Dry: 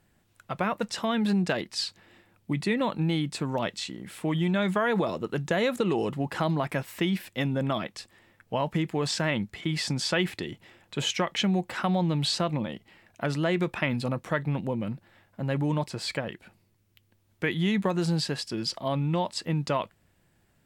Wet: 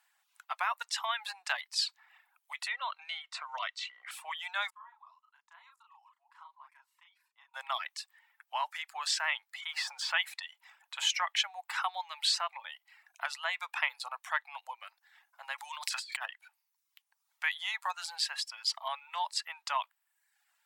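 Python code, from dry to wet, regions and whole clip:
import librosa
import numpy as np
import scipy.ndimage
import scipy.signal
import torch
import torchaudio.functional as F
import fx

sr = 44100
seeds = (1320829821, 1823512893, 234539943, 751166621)

y = fx.chain(x, sr, fx.air_absorb(metres=110.0),
    fx.notch_comb(f0_hz=840.0),
    fx.band_squash(depth_pct=100), at=(2.68, 4.11))
y = fx.chain(y, sr, fx.bandpass_q(hz=1000.0, q=5.6),
    fx.differentiator(),
    fx.doubler(ms=36.0, db=-2.5), at=(4.7, 7.54))
y = fx.chain(y, sr, fx.zero_step(step_db=-41.0),
    fx.high_shelf(hz=4600.0, db=-11.5),
    fx.band_squash(depth_pct=40), at=(9.7, 10.14))
y = fx.chain(y, sr, fx.tilt_shelf(db=-10.0, hz=820.0),
    fx.over_compress(threshold_db=-37.0, ratio=-1.0), at=(15.58, 16.26))
y = scipy.signal.sosfilt(scipy.signal.butter(8, 800.0, 'highpass', fs=sr, output='sos'), y)
y = fx.dereverb_blind(y, sr, rt60_s=0.73)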